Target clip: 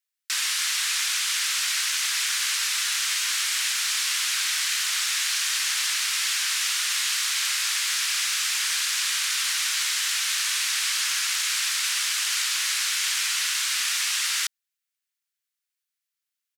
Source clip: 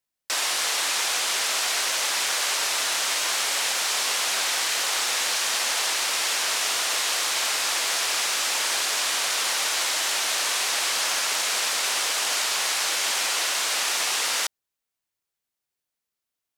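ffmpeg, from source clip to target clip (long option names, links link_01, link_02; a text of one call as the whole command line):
ffmpeg -i in.wav -filter_complex "[0:a]highpass=frequency=1400:width=0.5412,highpass=frequency=1400:width=1.3066,asplit=3[link_01][link_02][link_03];[link_01]afade=type=out:start_time=5.64:duration=0.02[link_04];[link_02]asplit=6[link_05][link_06][link_07][link_08][link_09][link_10];[link_06]adelay=186,afreqshift=-130,volume=-20dB[link_11];[link_07]adelay=372,afreqshift=-260,volume=-24dB[link_12];[link_08]adelay=558,afreqshift=-390,volume=-28dB[link_13];[link_09]adelay=744,afreqshift=-520,volume=-32dB[link_14];[link_10]adelay=930,afreqshift=-650,volume=-36.1dB[link_15];[link_05][link_11][link_12][link_13][link_14][link_15]amix=inputs=6:normalize=0,afade=type=in:start_time=5.64:duration=0.02,afade=type=out:start_time=7.75:duration=0.02[link_16];[link_03]afade=type=in:start_time=7.75:duration=0.02[link_17];[link_04][link_16][link_17]amix=inputs=3:normalize=0" out.wav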